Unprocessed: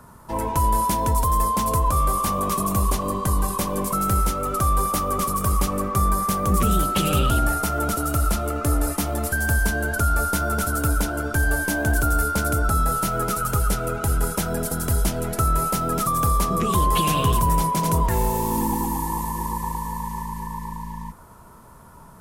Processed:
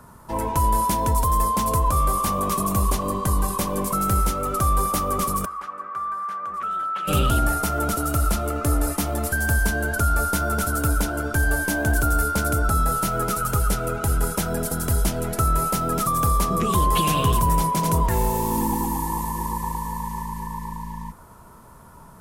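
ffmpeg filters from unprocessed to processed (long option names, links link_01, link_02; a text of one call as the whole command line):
ffmpeg -i in.wav -filter_complex "[0:a]asplit=3[link_01][link_02][link_03];[link_01]afade=type=out:start_time=5.44:duration=0.02[link_04];[link_02]bandpass=frequency=1400:width_type=q:width=3,afade=type=in:start_time=5.44:duration=0.02,afade=type=out:start_time=7.07:duration=0.02[link_05];[link_03]afade=type=in:start_time=7.07:duration=0.02[link_06];[link_04][link_05][link_06]amix=inputs=3:normalize=0" out.wav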